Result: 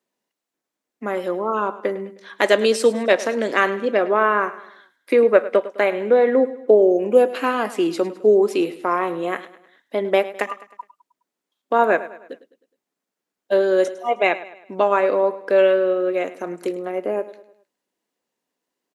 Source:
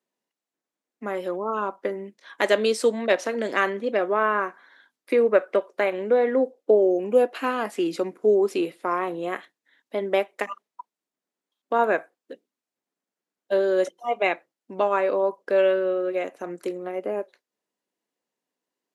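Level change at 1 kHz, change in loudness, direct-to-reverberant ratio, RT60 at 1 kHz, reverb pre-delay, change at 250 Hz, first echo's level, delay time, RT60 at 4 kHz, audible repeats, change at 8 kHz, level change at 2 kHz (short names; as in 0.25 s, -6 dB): +4.5 dB, +4.5 dB, none, none, none, +4.5 dB, -16.0 dB, 0.104 s, none, 3, n/a, +4.5 dB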